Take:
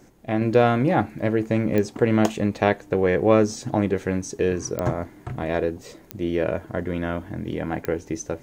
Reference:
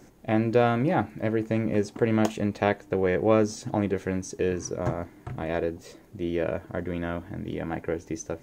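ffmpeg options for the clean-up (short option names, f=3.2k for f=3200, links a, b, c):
-af "adeclick=t=4,asetnsamples=n=441:p=0,asendcmd='0.41 volume volume -4dB',volume=0dB"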